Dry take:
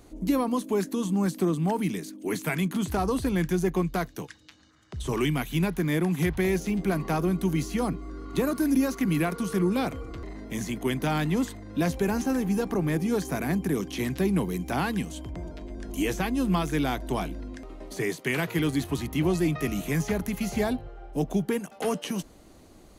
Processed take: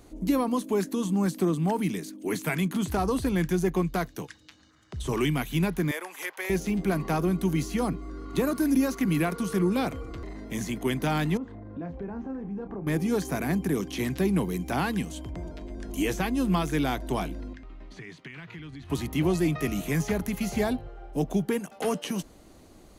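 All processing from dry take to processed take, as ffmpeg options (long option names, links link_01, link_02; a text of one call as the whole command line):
ffmpeg -i in.wav -filter_complex "[0:a]asettb=1/sr,asplit=3[link_01][link_02][link_03];[link_01]atrim=end=5.914[link_04];[link_02]atrim=start=5.91:end=6.5,asetpts=PTS-STARTPTS,afade=type=in:duration=0.004:curve=qsin,afade=type=out:start_time=0.586:duration=0.004:curve=qsin,highpass=frequency=560:width=0.5412,highpass=frequency=560:width=1.3066,equalizer=frequency=3900:width_type=o:width=0.43:gain=-4.5,bandreject=frequency=710:width=7.6[link_05];[link_03]atrim=start=6.496[link_06];[link_04][link_05]acrossfade=duration=0.004:curve1=hsin:curve2=qsin[link_07];[link_07][link_06]acrossfade=duration=0.004:curve1=qsin:curve2=hsin,asettb=1/sr,asplit=3[link_08][link_09][link_10];[link_08]atrim=end=11.374[link_11];[link_09]atrim=start=11.37:end=12.87,asetpts=PTS-STARTPTS,afade=type=in:duration=0.004:curve=qsin,afade=type=out:start_time=1.496:duration=0.004:curve=qsin,lowpass=1200,acompressor=threshold=-38dB:ratio=2.5:attack=3.2:release=140:knee=1:detection=peak,asplit=2[link_12][link_13];[link_13]adelay=30,volume=-9dB[link_14];[link_12][link_14]amix=inputs=2:normalize=0,atrim=end_sample=66150[link_15];[link_10]atrim=start=12.866[link_16];[link_11][link_15]acrossfade=duration=0.004:curve1=hsin:curve2=qsin[link_17];[link_17][link_16]acrossfade=duration=0.004:curve1=qsin:curve2=hsin,asettb=1/sr,asplit=3[link_18][link_19][link_20];[link_18]atrim=end=17.534[link_21];[link_19]atrim=start=17.53:end=18.9,asetpts=PTS-STARTPTS,afade=type=in:duration=0.004:curve=qsin,afade=type=out:start_time=1.366:duration=0.004:curve=qsin,equalizer=frequency=510:width_type=o:width=1.8:gain=-13.5,acompressor=threshold=-37dB:ratio=12:attack=3.2:release=140:knee=1:detection=peak,lowpass=3100[link_22];[link_20]atrim=start=18.896[link_23];[link_21][link_22]acrossfade=duration=0.004:curve1=hsin:curve2=qsin[link_24];[link_24][link_23]acrossfade=duration=0.004:curve1=qsin:curve2=hsin" out.wav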